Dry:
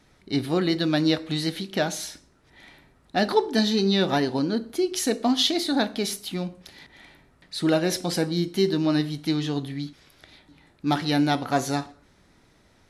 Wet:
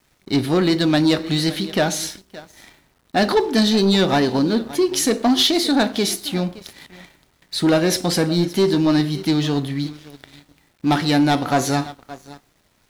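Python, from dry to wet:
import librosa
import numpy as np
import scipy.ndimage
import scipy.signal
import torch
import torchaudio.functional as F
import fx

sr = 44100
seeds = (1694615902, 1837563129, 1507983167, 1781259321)

y = x + 10.0 ** (-19.5 / 20.0) * np.pad(x, (int(570 * sr / 1000.0), 0))[:len(x)]
y = fx.leveller(y, sr, passes=2)
y = fx.quant_dither(y, sr, seeds[0], bits=10, dither='none')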